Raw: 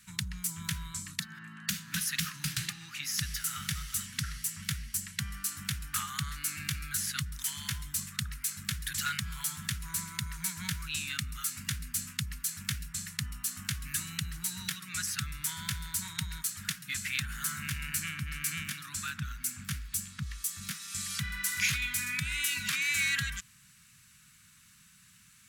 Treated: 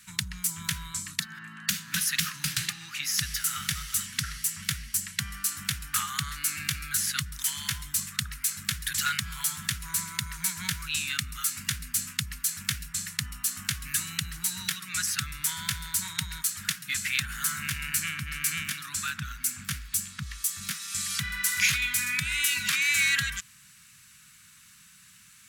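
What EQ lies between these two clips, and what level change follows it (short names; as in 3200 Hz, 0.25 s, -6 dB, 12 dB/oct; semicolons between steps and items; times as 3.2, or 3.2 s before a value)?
low shelf 390 Hz -6 dB; +5.5 dB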